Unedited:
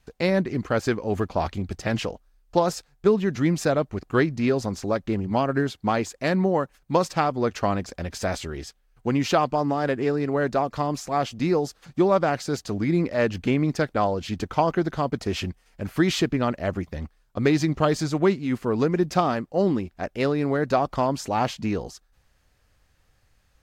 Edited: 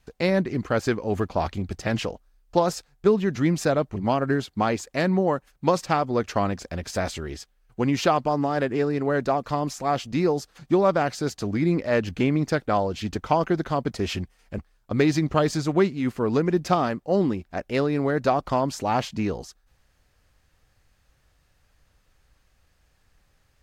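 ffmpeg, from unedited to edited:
-filter_complex "[0:a]asplit=3[a][b][c];[a]atrim=end=3.962[d];[b]atrim=start=5.228:end=15.852[e];[c]atrim=start=17.038[f];[d][e]acrossfade=d=0.004:c1=hsin:c2=hsin[g];[g][f]acrossfade=d=0.004:c1=hsin:c2=hsin"

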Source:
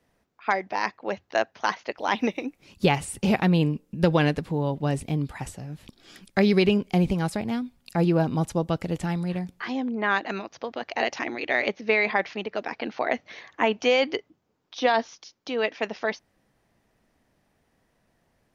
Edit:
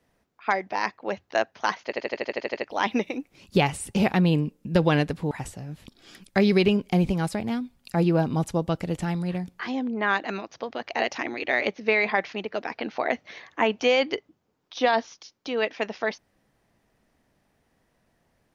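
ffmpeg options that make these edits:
-filter_complex "[0:a]asplit=11[a][b][c][d][e][f][g][h][i][j][k];[a]atrim=end=1.932[l];[b]atrim=start=1.848:end=1.932[m];[c]atrim=start=1.848:end=1.932[n];[d]atrim=start=1.848:end=1.932[o];[e]atrim=start=1.848:end=1.932[p];[f]atrim=start=1.848:end=1.932[q];[g]atrim=start=1.848:end=1.932[r];[h]atrim=start=1.848:end=1.932[s];[i]atrim=start=1.848:end=1.932[t];[j]atrim=start=1.848:end=4.592[u];[k]atrim=start=5.318[v];[l][m]acrossfade=d=0.004:c1=hsin:c2=hsin[w];[w][n]acrossfade=d=0.004:c1=hsin:c2=hsin[x];[x][o]acrossfade=d=0.004:c1=hsin:c2=hsin[y];[y][p]acrossfade=d=0.004:c1=hsin:c2=hsin[z];[z][q]acrossfade=d=0.004:c1=hsin:c2=hsin[aa];[aa][r]acrossfade=d=0.004:c1=hsin:c2=hsin[ab];[ab][s]acrossfade=d=0.004:c1=hsin:c2=hsin[ac];[ac][t]acrossfade=d=0.004:c1=hsin:c2=hsin[ad];[ad][u]acrossfade=d=0.004:c1=hsin:c2=hsin[ae];[ae][v]acrossfade=d=0.004:c1=hsin:c2=hsin"

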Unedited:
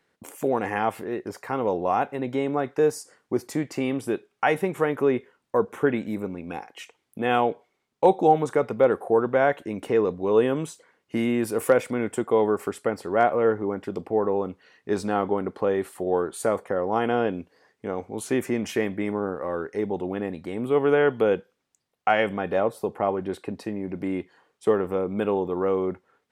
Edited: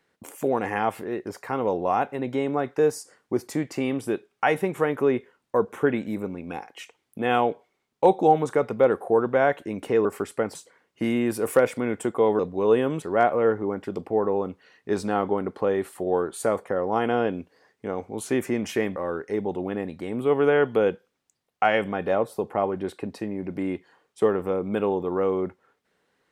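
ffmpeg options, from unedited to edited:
-filter_complex "[0:a]asplit=6[a][b][c][d][e][f];[a]atrim=end=10.052[g];[b]atrim=start=12.518:end=13.022[h];[c]atrim=start=10.678:end=12.522[i];[d]atrim=start=10.048:end=10.682[j];[e]atrim=start=13.018:end=18.962[k];[f]atrim=start=19.408[l];[g][h]acrossfade=d=0.004:c1=hsin:c2=hsin[m];[m][i]acrossfade=d=0.004:c1=hsin:c2=hsin[n];[n][j]acrossfade=d=0.004:c1=hsin:c2=hsin[o];[o][k]acrossfade=d=0.004:c1=hsin:c2=hsin[p];[p][l]acrossfade=d=0.004:c1=hsin:c2=hsin"

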